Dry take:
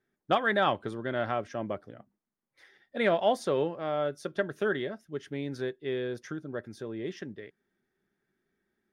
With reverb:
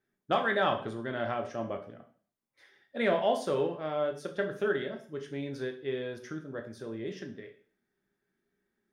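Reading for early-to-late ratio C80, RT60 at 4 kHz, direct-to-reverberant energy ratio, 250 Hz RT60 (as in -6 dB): 14.5 dB, 0.45 s, 4.0 dB, 0.40 s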